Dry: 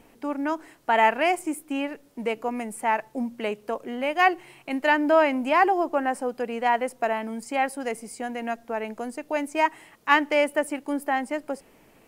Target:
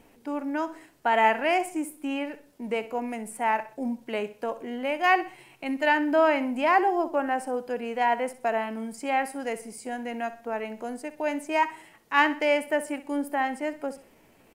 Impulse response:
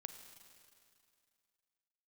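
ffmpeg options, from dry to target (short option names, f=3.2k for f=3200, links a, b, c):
-af "bandreject=f=1.2k:w=19,atempo=0.83,aecho=1:1:63|126|189:0.188|0.0678|0.0244,volume=-2dB"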